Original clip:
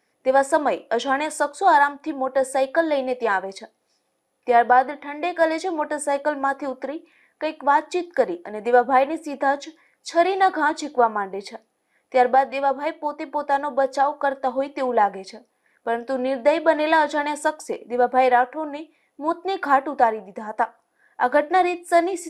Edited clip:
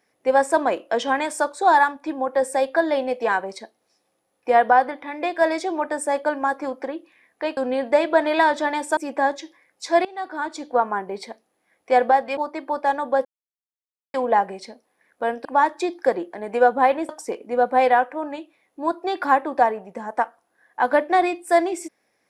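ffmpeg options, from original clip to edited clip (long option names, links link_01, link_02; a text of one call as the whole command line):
ffmpeg -i in.wav -filter_complex "[0:a]asplit=9[link_01][link_02][link_03][link_04][link_05][link_06][link_07][link_08][link_09];[link_01]atrim=end=7.572[link_10];[link_02]atrim=start=16.098:end=17.502[link_11];[link_03]atrim=start=9.208:end=10.29,asetpts=PTS-STARTPTS,afade=type=out:start_time=1.078:duration=0.004:curve=hsin:silence=0.0841395[link_12];[link_04]atrim=start=10.29:end=12.612,asetpts=PTS-STARTPTS,afade=type=in:duration=0.93:silence=0.0841395[link_13];[link_05]atrim=start=13.018:end=13.9,asetpts=PTS-STARTPTS,afade=type=out:start_time=0.878:duration=0.004:curve=hsin[link_14];[link_06]atrim=start=13.9:end=14.79,asetpts=PTS-STARTPTS,volume=0[link_15];[link_07]atrim=start=14.79:end=16.102,asetpts=PTS-STARTPTS,afade=type=in:duration=0.004:curve=hsin[link_16];[link_08]atrim=start=7.568:end=9.212[link_17];[link_09]atrim=start=17.498[link_18];[link_10][link_11]acrossfade=duration=0.004:curve1=hsin:curve2=hsin[link_19];[link_12][link_13]concat=n=2:v=0:a=1[link_20];[link_19][link_20]acrossfade=duration=0.004:curve1=hsin:curve2=hsin[link_21];[link_14][link_15][link_16]concat=n=3:v=0:a=1[link_22];[link_21][link_22]acrossfade=duration=0.004:curve1=hsin:curve2=hsin[link_23];[link_23][link_17]acrossfade=duration=0.004:curve1=hsin:curve2=hsin[link_24];[link_24][link_18]acrossfade=duration=0.004:curve1=hsin:curve2=hsin" out.wav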